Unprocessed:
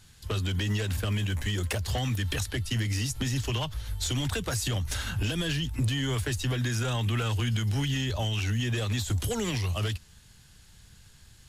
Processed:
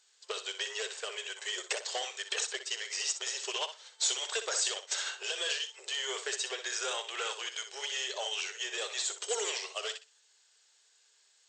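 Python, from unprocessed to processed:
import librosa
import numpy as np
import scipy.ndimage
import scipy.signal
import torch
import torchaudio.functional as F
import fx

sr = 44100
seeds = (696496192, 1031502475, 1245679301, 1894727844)

p1 = fx.high_shelf(x, sr, hz=4200.0, db=9.5)
p2 = 10.0 ** (-20.5 / 20.0) * np.tanh(p1 / 10.0 ** (-20.5 / 20.0))
p3 = fx.brickwall_bandpass(p2, sr, low_hz=370.0, high_hz=8300.0)
p4 = p3 + fx.echo_feedback(p3, sr, ms=62, feedback_pct=25, wet_db=-7, dry=0)
y = fx.upward_expand(p4, sr, threshold_db=-52.0, expansion=1.5)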